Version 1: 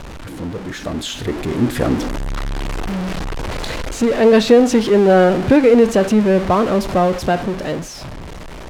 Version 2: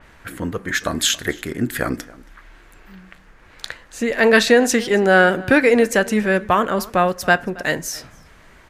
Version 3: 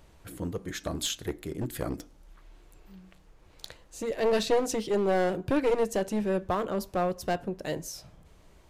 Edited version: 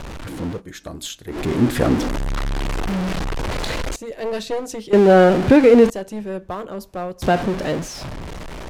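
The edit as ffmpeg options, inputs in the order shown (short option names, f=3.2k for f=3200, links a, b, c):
-filter_complex "[2:a]asplit=3[a][b][c];[0:a]asplit=4[d][e][f][g];[d]atrim=end=0.62[h];[a]atrim=start=0.52:end=1.39[i];[e]atrim=start=1.29:end=3.962[j];[b]atrim=start=3.958:end=4.932[k];[f]atrim=start=4.928:end=5.902[l];[c]atrim=start=5.898:end=7.222[m];[g]atrim=start=7.218[n];[h][i]acrossfade=d=0.1:c1=tri:c2=tri[o];[o][j]acrossfade=d=0.1:c1=tri:c2=tri[p];[p][k]acrossfade=d=0.004:c1=hsin:c2=hsin[q];[q][l]acrossfade=d=0.004:c1=hsin:c2=hsin[r];[r][m]acrossfade=d=0.004:c1=hsin:c2=hsin[s];[s][n]acrossfade=d=0.004:c1=hsin:c2=hsin"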